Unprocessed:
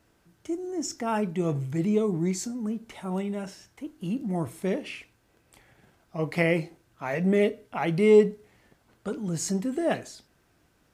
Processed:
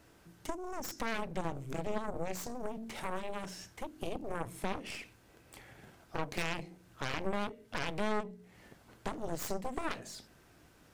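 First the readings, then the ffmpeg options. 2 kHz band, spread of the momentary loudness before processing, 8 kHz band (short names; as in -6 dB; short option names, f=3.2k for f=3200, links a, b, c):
-6.0 dB, 16 LU, -9.0 dB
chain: -af "bandreject=f=45:t=h:w=4,bandreject=f=90:t=h:w=4,bandreject=f=135:t=h:w=4,bandreject=f=180:t=h:w=4,bandreject=f=225:t=h:w=4,acompressor=threshold=-39dB:ratio=4,aeval=exprs='0.0473*(cos(1*acos(clip(val(0)/0.0473,-1,1)))-cos(1*PI/2))+0.00944*(cos(3*acos(clip(val(0)/0.0473,-1,1)))-cos(3*PI/2))+0.015*(cos(4*acos(clip(val(0)/0.0473,-1,1)))-cos(4*PI/2))+0.0119*(cos(7*acos(clip(val(0)/0.0473,-1,1)))-cos(7*PI/2))':c=same,volume=1.5dB"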